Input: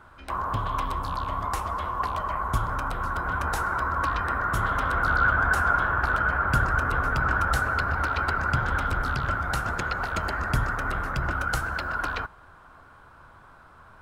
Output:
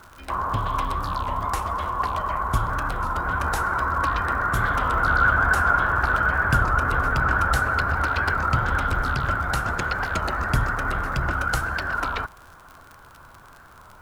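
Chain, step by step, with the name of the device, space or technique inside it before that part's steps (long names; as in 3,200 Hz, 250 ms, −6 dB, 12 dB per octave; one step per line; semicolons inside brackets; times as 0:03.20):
warped LP (wow of a warped record 33 1/3 rpm, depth 100 cents; surface crackle 57 per second −37 dBFS; white noise bed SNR 42 dB)
level +3 dB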